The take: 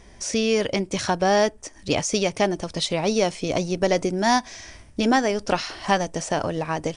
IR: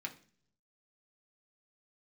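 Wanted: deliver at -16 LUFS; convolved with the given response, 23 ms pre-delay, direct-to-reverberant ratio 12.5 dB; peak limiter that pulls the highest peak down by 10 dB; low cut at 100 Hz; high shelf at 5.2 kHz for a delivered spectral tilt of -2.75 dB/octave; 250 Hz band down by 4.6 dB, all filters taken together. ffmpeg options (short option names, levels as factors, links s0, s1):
-filter_complex "[0:a]highpass=100,equalizer=f=250:t=o:g=-6,highshelf=f=5200:g=8,alimiter=limit=0.178:level=0:latency=1,asplit=2[s0][s1];[1:a]atrim=start_sample=2205,adelay=23[s2];[s1][s2]afir=irnorm=-1:irlink=0,volume=0.237[s3];[s0][s3]amix=inputs=2:normalize=0,volume=3.35"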